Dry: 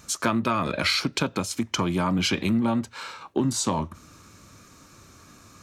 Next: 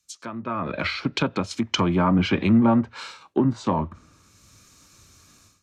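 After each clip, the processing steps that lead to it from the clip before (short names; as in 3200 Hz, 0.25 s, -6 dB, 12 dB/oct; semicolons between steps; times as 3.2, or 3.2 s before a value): treble ducked by the level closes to 1900 Hz, closed at -21 dBFS; AGC gain up to 15.5 dB; three-band expander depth 70%; gain -7 dB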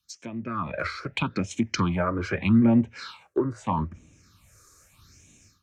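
phaser stages 6, 0.8 Hz, lowest notch 200–1300 Hz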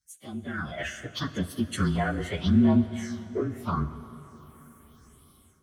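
inharmonic rescaling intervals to 114%; plate-style reverb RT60 4.2 s, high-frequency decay 0.8×, DRR 12.5 dB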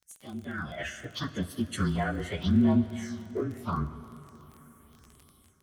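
crackle 25/s -36 dBFS; gain -2.5 dB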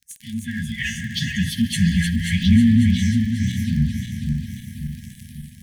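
regenerating reverse delay 0.271 s, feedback 70%, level -5 dB; sample leveller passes 1; brick-wall FIR band-stop 250–1600 Hz; gain +8 dB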